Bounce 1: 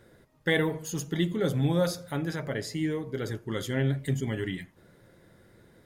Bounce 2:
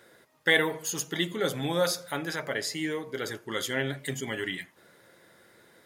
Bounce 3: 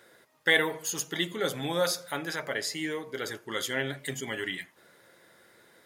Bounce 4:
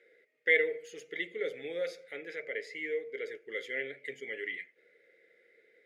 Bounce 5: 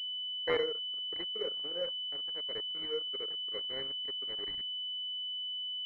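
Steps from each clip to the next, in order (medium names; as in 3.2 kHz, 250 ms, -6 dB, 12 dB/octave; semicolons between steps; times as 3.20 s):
high-pass 880 Hz 6 dB/octave; trim +6.5 dB
bass shelf 330 Hz -4.5 dB
two resonant band-passes 990 Hz, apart 2.2 oct; trim +2.5 dB
crossover distortion -40.5 dBFS; class-D stage that switches slowly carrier 3 kHz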